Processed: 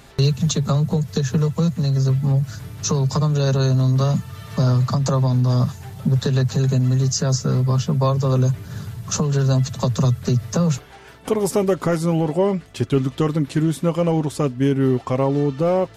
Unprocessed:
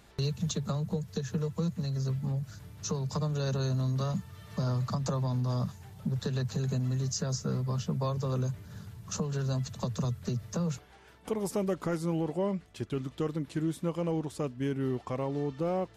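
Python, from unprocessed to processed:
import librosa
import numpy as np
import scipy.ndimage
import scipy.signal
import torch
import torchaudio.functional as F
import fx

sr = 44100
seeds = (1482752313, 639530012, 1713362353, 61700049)

p1 = x + 0.33 * np.pad(x, (int(7.5 * sr / 1000.0), 0))[:len(x)]
p2 = fx.rider(p1, sr, range_db=3, speed_s=0.5)
p3 = p1 + (p2 * librosa.db_to_amplitude(2.0))
y = p3 * librosa.db_to_amplitude(4.5)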